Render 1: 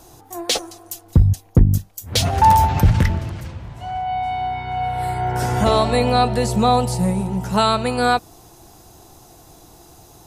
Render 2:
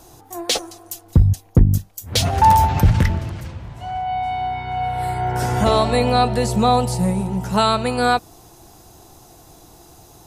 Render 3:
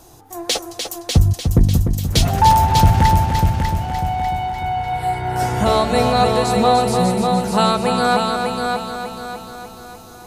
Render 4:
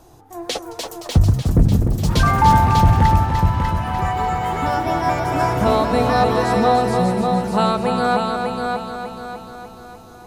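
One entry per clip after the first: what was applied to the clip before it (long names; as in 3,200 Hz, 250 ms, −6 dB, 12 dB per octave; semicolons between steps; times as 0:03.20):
no processing that can be heard
echo machine with several playback heads 298 ms, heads first and second, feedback 50%, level −6.5 dB
delay with pitch and tempo change per echo 420 ms, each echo +5 semitones, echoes 3, each echo −6 dB; high-shelf EQ 3,100 Hz −9 dB; level −1 dB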